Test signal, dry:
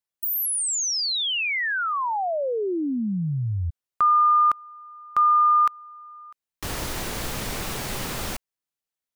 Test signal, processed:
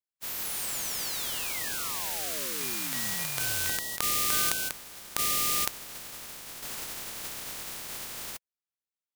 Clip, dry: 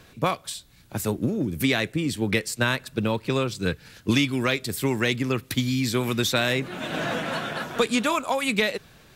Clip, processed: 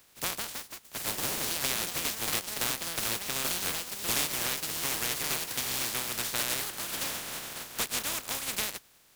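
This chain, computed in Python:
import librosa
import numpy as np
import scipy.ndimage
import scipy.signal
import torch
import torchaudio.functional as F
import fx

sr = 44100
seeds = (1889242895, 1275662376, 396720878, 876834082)

y = fx.spec_flatten(x, sr, power=0.16)
y = fx.echo_pitch(y, sr, ms=203, semitones=4, count=3, db_per_echo=-3.0)
y = F.gain(torch.from_numpy(y), -9.0).numpy()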